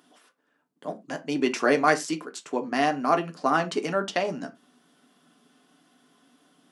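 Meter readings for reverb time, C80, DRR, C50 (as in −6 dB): non-exponential decay, 26.0 dB, 5.5 dB, 19.0 dB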